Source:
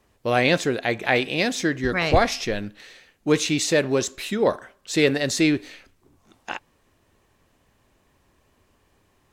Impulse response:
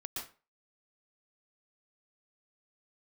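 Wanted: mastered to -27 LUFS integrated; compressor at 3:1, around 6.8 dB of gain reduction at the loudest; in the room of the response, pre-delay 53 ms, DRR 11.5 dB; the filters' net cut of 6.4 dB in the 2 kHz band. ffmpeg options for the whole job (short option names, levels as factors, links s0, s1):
-filter_complex "[0:a]equalizer=f=2000:t=o:g=-8,acompressor=threshold=0.0794:ratio=3,asplit=2[s0][s1];[1:a]atrim=start_sample=2205,adelay=53[s2];[s1][s2]afir=irnorm=-1:irlink=0,volume=0.266[s3];[s0][s3]amix=inputs=2:normalize=0"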